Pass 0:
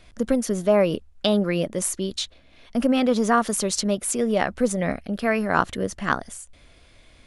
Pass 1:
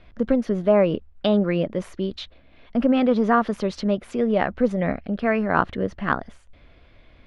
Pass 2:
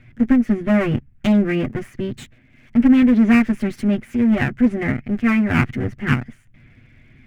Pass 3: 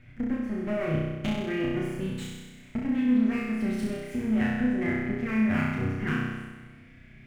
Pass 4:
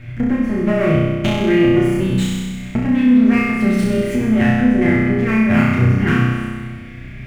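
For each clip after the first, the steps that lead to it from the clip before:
air absorption 320 m; gain +2 dB
minimum comb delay 8.2 ms; graphic EQ 125/250/500/1000/2000/4000 Hz +9/+6/-8/-9/+10/-10 dB; gain +1.5 dB
compressor 5:1, threshold -23 dBFS, peak gain reduction 13 dB; on a send: flutter echo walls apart 5.5 m, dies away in 1.3 s; on the sum: gain -6 dB
in parallel at -0.5 dB: compressor, threshold -36 dBFS, peak gain reduction 16 dB; on the sum: reverb RT60 0.70 s, pre-delay 4 ms, DRR 3.5 dB; gain +9 dB

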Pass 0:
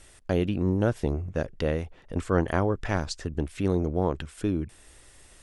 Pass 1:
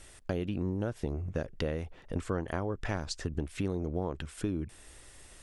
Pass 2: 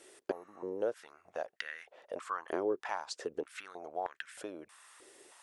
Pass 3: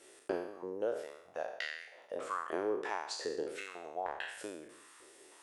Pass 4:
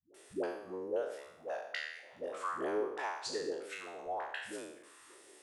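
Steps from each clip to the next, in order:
compressor 5:1, threshold -29 dBFS, peak gain reduction 11.5 dB
spectral repair 0.34–0.6, 1100–9800 Hz after; stepped high-pass 3.2 Hz 380–1700 Hz; gain -4.5 dB
spectral trails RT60 0.76 s; gain -2.5 dB
dispersion highs, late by 0.144 s, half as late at 330 Hz

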